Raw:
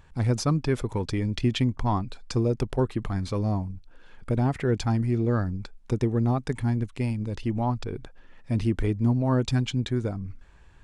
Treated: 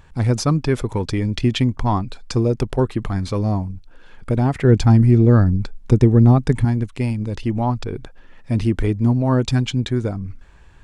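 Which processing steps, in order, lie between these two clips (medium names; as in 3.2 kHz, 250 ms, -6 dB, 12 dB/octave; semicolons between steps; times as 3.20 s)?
4.64–6.65 s: bass shelf 340 Hz +8 dB; trim +6 dB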